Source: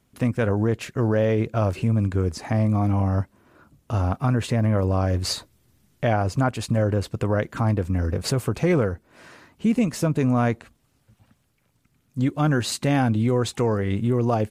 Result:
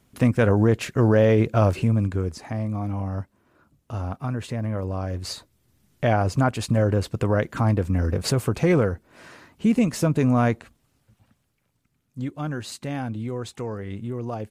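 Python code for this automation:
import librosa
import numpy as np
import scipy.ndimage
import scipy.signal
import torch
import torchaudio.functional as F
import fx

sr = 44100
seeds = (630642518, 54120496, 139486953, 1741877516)

y = fx.gain(x, sr, db=fx.line((1.65, 3.5), (2.55, -6.5), (5.35, -6.5), (6.1, 1.0), (10.46, 1.0), (12.56, -9.0)))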